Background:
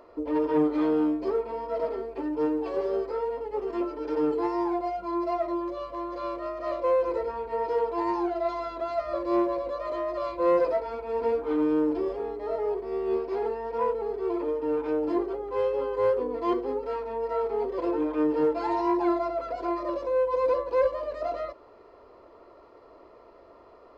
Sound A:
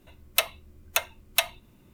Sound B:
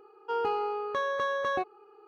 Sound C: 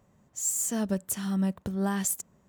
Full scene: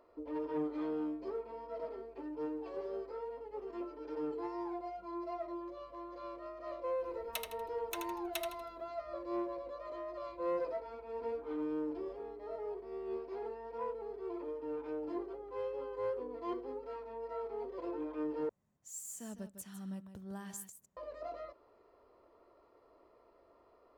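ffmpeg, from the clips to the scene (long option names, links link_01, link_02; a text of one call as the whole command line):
ffmpeg -i bed.wav -i cue0.wav -i cue1.wav -i cue2.wav -filter_complex "[0:a]volume=-13dB[link_01];[1:a]aecho=1:1:80|160|240|320:0.501|0.17|0.0579|0.0197[link_02];[3:a]aecho=1:1:155:0.299[link_03];[link_01]asplit=2[link_04][link_05];[link_04]atrim=end=18.494[link_06];[link_03]atrim=end=2.48,asetpts=PTS-STARTPTS,volume=-17dB[link_07];[link_05]atrim=start=20.966[link_08];[link_02]atrim=end=1.93,asetpts=PTS-STARTPTS,volume=-18dB,afade=type=in:duration=0.004:curve=hsin,afade=type=out:start_time=1.926:duration=0.004:curve=hsin,adelay=6970[link_09];[link_06][link_07]acrossfade=duration=0.004:curve1=hsin:curve2=hsin[link_10];[link_10][link_08]acrossfade=duration=0.004:curve1=hsin:curve2=hsin[link_11];[link_11][link_09]amix=inputs=2:normalize=0" out.wav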